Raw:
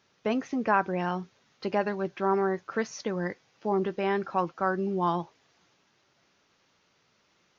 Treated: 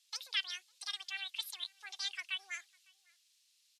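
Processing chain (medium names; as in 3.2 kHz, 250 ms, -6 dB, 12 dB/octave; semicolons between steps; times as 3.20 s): ladder band-pass 2.4 kHz, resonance 30%; treble shelf 2.5 kHz +9 dB; echo from a far wall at 190 m, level -26 dB; speed mistake 7.5 ips tape played at 15 ips; trim +5.5 dB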